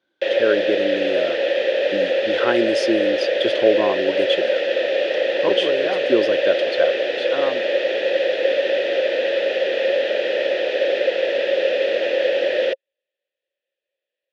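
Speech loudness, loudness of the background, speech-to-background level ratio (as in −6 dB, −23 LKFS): −23.5 LKFS, −20.0 LKFS, −3.5 dB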